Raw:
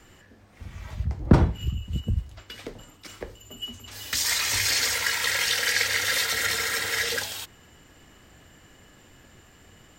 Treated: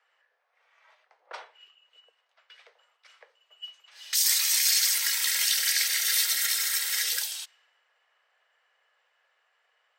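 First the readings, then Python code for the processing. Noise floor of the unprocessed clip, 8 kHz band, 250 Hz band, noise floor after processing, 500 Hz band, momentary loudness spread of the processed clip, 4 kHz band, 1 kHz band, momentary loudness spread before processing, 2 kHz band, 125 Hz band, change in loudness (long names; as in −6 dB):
−54 dBFS, +3.0 dB, below −40 dB, −73 dBFS, below −20 dB, 7 LU, −0.5 dB, −11.5 dB, 20 LU, −6.5 dB, below −40 dB, +1.5 dB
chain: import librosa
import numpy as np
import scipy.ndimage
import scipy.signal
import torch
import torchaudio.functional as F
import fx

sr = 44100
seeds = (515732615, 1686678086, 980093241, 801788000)

y = np.diff(x, prepend=0.0)
y = fx.env_lowpass(y, sr, base_hz=1400.0, full_db=-29.5)
y = scipy.signal.sosfilt(scipy.signal.butter(8, 470.0, 'highpass', fs=sr, output='sos'), y)
y = fx.notch(y, sr, hz=7100.0, q=10.0)
y = y * librosa.db_to_amplitude(4.5)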